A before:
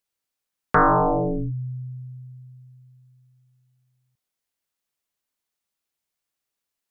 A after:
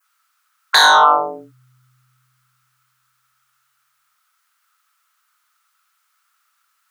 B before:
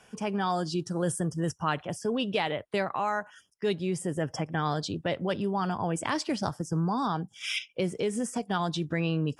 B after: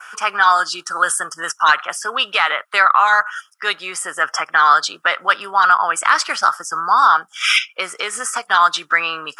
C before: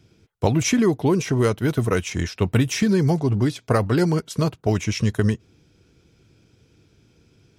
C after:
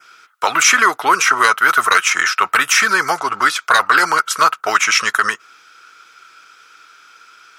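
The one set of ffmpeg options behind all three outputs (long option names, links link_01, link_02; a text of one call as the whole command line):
ffmpeg -i in.wav -af "adynamicequalizer=threshold=0.00355:dfrequency=3800:dqfactor=1.7:tfrequency=3800:tqfactor=1.7:attack=5:release=100:ratio=0.375:range=2.5:mode=cutabove:tftype=bell,highpass=frequency=1300:width_type=q:width=8.8,acontrast=60,afftfilt=real='re*lt(hypot(re,im),1.41)':imag='im*lt(hypot(re,im),1.41)':win_size=1024:overlap=0.75,alimiter=level_in=10dB:limit=-1dB:release=50:level=0:latency=1,volume=-1dB" out.wav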